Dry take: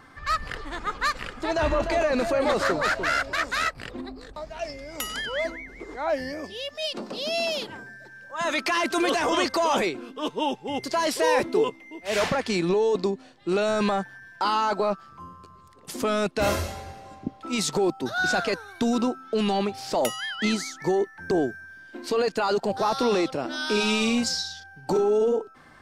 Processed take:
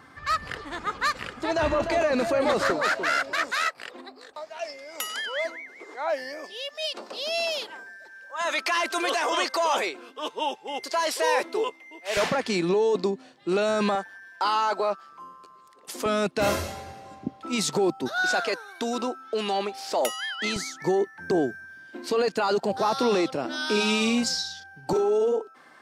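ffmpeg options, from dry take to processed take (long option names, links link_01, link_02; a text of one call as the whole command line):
ffmpeg -i in.wav -af "asetnsamples=nb_out_samples=441:pad=0,asendcmd='2.7 highpass f 230;3.51 highpass f 510;12.17 highpass f 150;13.95 highpass f 390;16.06 highpass f 99;18.08 highpass f 370;20.56 highpass f 110;24.93 highpass f 310',highpass=76" out.wav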